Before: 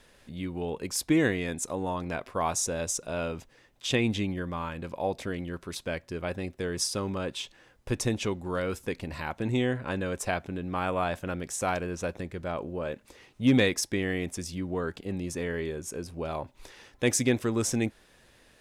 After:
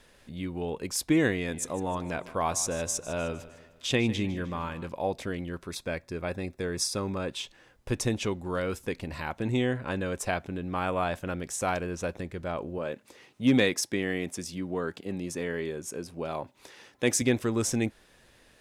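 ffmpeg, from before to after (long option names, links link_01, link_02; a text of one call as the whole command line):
ffmpeg -i in.wav -filter_complex "[0:a]asettb=1/sr,asplit=3[link_01][link_02][link_03];[link_01]atrim=end=1.354[link_04];[link_02]atrim=start=1.35:end=4.89,asetpts=PTS-STARTPTS,afade=type=in:duration=0.004:curve=qsin,afade=type=out:start_time=3.536:duration=0.004:curve=qsin,aecho=1:1:153|306|459|612:0.15|0.0748|0.0374|0.0187,atrim=end_sample=156114[link_05];[link_03]atrim=start=4.886[link_06];[link_04][link_05]acrossfade=duration=0.004:curve1=hsin:curve2=qsin[link_07];[link_07][link_06]acrossfade=duration=0.004:curve1=qsin:curve2=hsin,asettb=1/sr,asplit=3[link_08][link_09][link_10];[link_08]atrim=end=5.674[link_11];[link_09]atrim=start=5.67:end=7.29,asetpts=PTS-STARTPTS,afade=type=in:duration=0.004:curve=qsin,afade=type=out:start_time=1.616:duration=0.004:curve=qsin,asuperstop=centerf=3000:order=4:qfactor=7.9[link_12];[link_10]atrim=start=7.286[link_13];[link_11][link_12]acrossfade=duration=0.004:curve1=hsin:curve2=qsin[link_14];[link_14][link_13]acrossfade=duration=0.004:curve1=qsin:curve2=hsin,asettb=1/sr,asplit=3[link_15][link_16][link_17];[link_15]atrim=end=12.784[link_18];[link_16]atrim=start=12.78:end=17.22,asetpts=PTS-STARTPTS,afade=type=in:duration=0.004:curve=qsin,afade=type=out:start_time=4.436:duration=0.004:curve=qsin,highpass=130[link_19];[link_17]atrim=start=17.216[link_20];[link_18][link_19]acrossfade=duration=0.004:curve1=hsin:curve2=qsin[link_21];[link_21][link_20]acrossfade=duration=0.004:curve1=qsin:curve2=hsin" out.wav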